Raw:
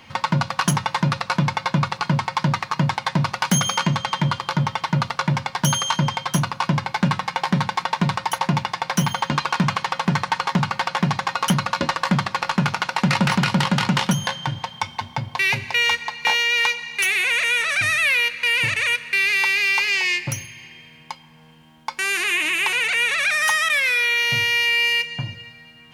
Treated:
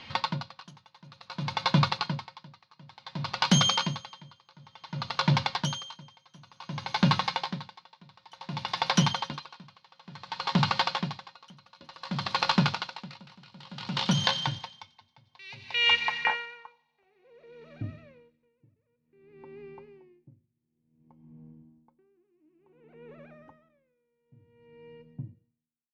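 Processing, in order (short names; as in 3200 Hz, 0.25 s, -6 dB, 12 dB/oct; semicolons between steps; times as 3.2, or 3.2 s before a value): ending faded out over 1.29 s; dynamic EQ 1900 Hz, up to -5 dB, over -31 dBFS, Q 1.7; low-pass sweep 4200 Hz -> 290 Hz, 15.62–17.7; thin delay 91 ms, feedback 85%, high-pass 4000 Hz, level -13 dB; dB-linear tremolo 0.56 Hz, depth 32 dB; gain -2.5 dB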